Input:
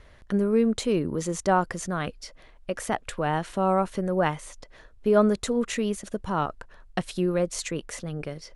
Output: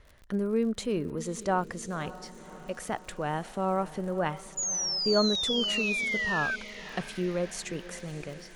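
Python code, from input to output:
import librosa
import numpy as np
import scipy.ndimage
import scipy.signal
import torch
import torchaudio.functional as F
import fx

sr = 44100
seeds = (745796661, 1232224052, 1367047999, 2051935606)

y = fx.spec_paint(x, sr, seeds[0], shape='fall', start_s=4.57, length_s=1.99, low_hz=1500.0, high_hz=7000.0, level_db=-25.0)
y = fx.echo_diffused(y, sr, ms=574, feedback_pct=61, wet_db=-16)
y = fx.dmg_crackle(y, sr, seeds[1], per_s=68.0, level_db=-37.0)
y = F.gain(torch.from_numpy(y), -5.5).numpy()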